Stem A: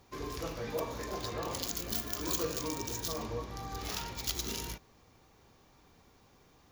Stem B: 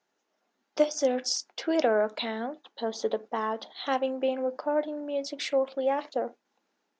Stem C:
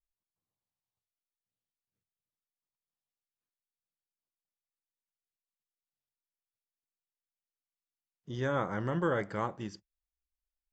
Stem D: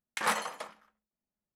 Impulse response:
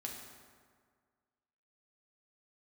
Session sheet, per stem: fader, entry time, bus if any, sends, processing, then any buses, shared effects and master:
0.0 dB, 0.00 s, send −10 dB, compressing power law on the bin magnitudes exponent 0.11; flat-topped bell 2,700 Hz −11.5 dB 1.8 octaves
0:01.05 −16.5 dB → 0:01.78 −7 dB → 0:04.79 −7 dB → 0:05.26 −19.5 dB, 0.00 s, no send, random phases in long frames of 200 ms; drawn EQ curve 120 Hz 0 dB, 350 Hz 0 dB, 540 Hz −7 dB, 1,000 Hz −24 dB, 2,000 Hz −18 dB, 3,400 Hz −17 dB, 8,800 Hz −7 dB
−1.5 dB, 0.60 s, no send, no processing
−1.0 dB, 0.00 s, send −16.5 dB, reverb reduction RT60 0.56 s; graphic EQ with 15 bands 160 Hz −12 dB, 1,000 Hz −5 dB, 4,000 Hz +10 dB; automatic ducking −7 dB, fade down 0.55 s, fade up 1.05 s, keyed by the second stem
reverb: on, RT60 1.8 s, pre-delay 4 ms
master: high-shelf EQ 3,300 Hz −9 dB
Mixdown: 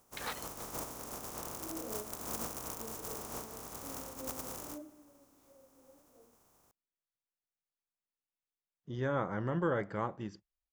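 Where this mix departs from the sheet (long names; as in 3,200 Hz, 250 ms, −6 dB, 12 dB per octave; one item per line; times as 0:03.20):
stem B −16.5 dB → −25.0 dB
stem D −1.0 dB → −9.0 dB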